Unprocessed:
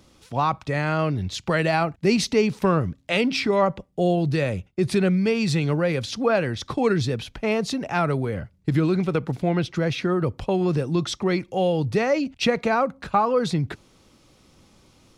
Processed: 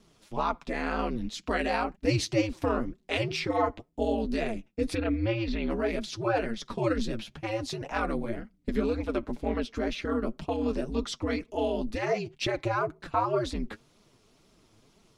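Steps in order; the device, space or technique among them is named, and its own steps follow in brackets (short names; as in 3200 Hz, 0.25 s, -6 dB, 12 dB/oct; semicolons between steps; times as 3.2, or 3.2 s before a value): 4.95–5.7 LPF 3900 Hz 24 dB/oct; alien voice (ring modulator 110 Hz; flange 2 Hz, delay 4.2 ms, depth 5.7 ms, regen +28%)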